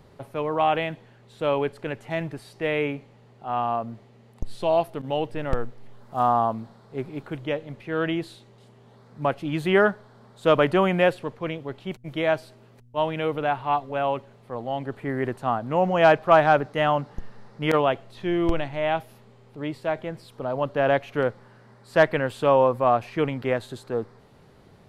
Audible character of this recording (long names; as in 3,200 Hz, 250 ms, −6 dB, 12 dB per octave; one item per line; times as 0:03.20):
background noise floor −53 dBFS
spectral slope −4.5 dB per octave